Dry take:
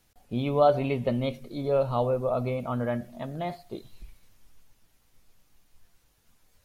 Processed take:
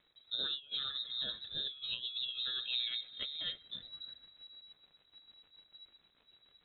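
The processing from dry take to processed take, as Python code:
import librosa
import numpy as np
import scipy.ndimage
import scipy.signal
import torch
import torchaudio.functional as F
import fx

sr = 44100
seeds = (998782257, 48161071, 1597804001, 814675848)

y = fx.notch(x, sr, hz=3000.0, q=5.7)
y = fx.dmg_crackle(y, sr, seeds[0], per_s=130.0, level_db=-50.0)
y = fx.over_compress(y, sr, threshold_db=-29.0, ratio=-0.5)
y = fx.rotary_switch(y, sr, hz=1.2, then_hz=6.7, switch_at_s=1.64)
y = fx.echo_wet_highpass(y, sr, ms=326, feedback_pct=32, hz=3000.0, wet_db=-12.5)
y = fx.freq_invert(y, sr, carrier_hz=3900)
y = fx.high_shelf(y, sr, hz=2500.0, db=-12.0)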